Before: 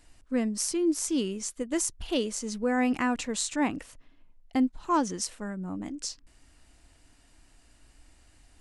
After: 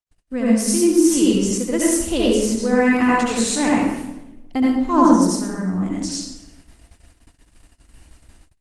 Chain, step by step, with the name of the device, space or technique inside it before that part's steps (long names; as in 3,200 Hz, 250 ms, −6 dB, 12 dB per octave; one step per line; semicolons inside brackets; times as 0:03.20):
0:04.93–0:05.35: graphic EQ with 15 bands 250 Hz +9 dB, 630 Hz +4 dB, 2,500 Hz −12 dB
speakerphone in a meeting room (convolution reverb RT60 1.0 s, pre-delay 66 ms, DRR −5.5 dB; automatic gain control gain up to 4 dB; noise gate −45 dBFS, range −45 dB; level +1 dB; Opus 24 kbit/s 48,000 Hz)